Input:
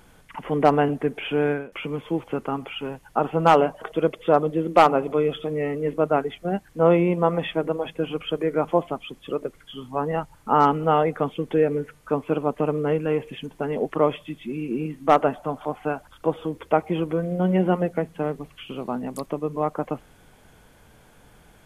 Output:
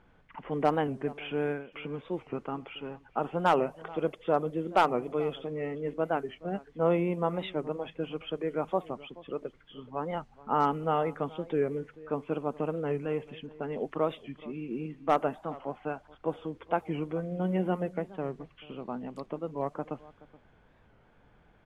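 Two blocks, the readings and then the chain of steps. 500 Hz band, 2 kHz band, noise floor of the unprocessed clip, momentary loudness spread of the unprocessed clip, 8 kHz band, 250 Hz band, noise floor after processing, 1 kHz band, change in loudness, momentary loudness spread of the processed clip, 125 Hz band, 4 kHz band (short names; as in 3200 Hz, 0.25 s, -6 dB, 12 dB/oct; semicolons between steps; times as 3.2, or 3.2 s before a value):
-8.5 dB, -7.5 dB, -54 dBFS, 12 LU, n/a, -8.5 dB, -62 dBFS, -8.5 dB, -8.5 dB, 12 LU, -8.5 dB, -8.5 dB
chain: outdoor echo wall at 73 m, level -20 dB; low-pass opened by the level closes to 2400 Hz, open at -16 dBFS; record warp 45 rpm, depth 160 cents; gain -8.5 dB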